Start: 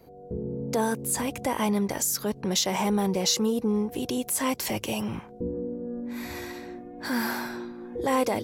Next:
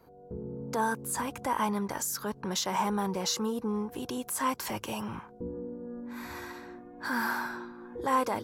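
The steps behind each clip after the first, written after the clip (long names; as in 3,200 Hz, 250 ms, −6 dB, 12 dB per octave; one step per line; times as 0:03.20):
flat-topped bell 1,200 Hz +9 dB 1.1 octaves
level −6.5 dB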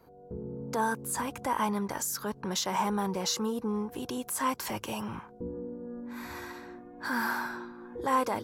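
no processing that can be heard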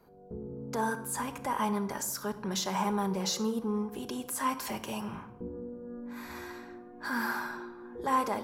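rectangular room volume 2,600 cubic metres, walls furnished, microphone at 1.3 metres
level −2.5 dB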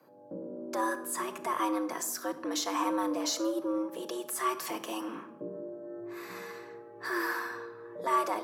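frequency shifter +110 Hz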